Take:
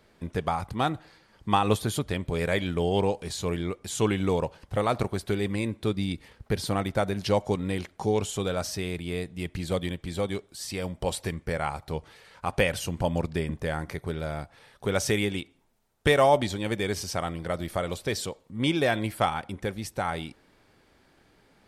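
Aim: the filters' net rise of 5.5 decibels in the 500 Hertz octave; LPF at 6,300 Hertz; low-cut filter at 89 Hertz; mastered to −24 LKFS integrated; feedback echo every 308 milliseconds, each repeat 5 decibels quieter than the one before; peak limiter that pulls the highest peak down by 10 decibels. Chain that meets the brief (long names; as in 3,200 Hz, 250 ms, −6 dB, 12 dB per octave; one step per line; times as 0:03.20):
high-pass filter 89 Hz
low-pass filter 6,300 Hz
parametric band 500 Hz +6.5 dB
brickwall limiter −15 dBFS
repeating echo 308 ms, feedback 56%, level −5 dB
level +3.5 dB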